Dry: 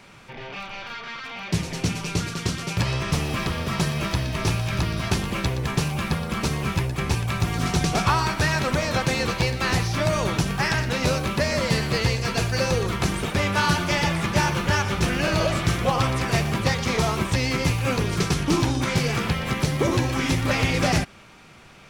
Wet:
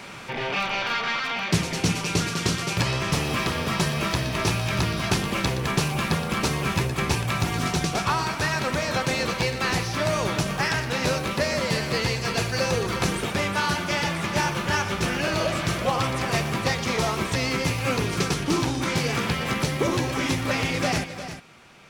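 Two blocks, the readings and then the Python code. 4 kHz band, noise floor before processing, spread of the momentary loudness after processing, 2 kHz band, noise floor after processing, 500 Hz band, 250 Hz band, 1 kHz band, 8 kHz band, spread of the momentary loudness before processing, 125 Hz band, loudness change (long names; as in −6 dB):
+0.5 dB, −47 dBFS, 1 LU, 0.0 dB, −34 dBFS, −0.5 dB, −1.5 dB, 0.0 dB, +0.5 dB, 5 LU, −3.5 dB, −1.0 dB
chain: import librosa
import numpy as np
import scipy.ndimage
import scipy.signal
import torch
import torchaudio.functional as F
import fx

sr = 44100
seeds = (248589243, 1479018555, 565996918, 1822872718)

y = fx.low_shelf(x, sr, hz=100.0, db=-10.5)
y = fx.rider(y, sr, range_db=10, speed_s=0.5)
y = fx.echo_multitap(y, sr, ms=(259, 356), db=(-17.5, -11.5))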